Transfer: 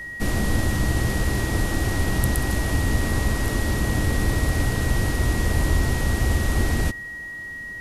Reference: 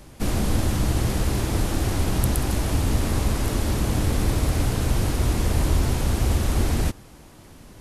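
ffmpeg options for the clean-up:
-af "bandreject=f=1900:w=30"

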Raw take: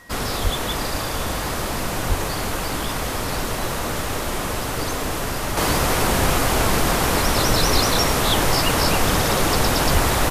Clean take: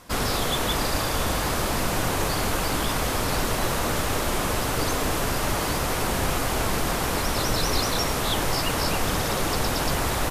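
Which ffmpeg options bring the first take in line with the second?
-filter_complex "[0:a]bandreject=f=1900:w=30,asplit=3[s0][s1][s2];[s0]afade=t=out:st=0.43:d=0.02[s3];[s1]highpass=f=140:w=0.5412,highpass=f=140:w=1.3066,afade=t=in:st=0.43:d=0.02,afade=t=out:st=0.55:d=0.02[s4];[s2]afade=t=in:st=0.55:d=0.02[s5];[s3][s4][s5]amix=inputs=3:normalize=0,asplit=3[s6][s7][s8];[s6]afade=t=out:st=2.08:d=0.02[s9];[s7]highpass=f=140:w=0.5412,highpass=f=140:w=1.3066,afade=t=in:st=2.08:d=0.02,afade=t=out:st=2.2:d=0.02[s10];[s8]afade=t=in:st=2.2:d=0.02[s11];[s9][s10][s11]amix=inputs=3:normalize=0,asplit=3[s12][s13][s14];[s12]afade=t=out:st=9.93:d=0.02[s15];[s13]highpass=f=140:w=0.5412,highpass=f=140:w=1.3066,afade=t=in:st=9.93:d=0.02,afade=t=out:st=10.05:d=0.02[s16];[s14]afade=t=in:st=10.05:d=0.02[s17];[s15][s16][s17]amix=inputs=3:normalize=0,asetnsamples=n=441:p=0,asendcmd='5.57 volume volume -6dB',volume=1"

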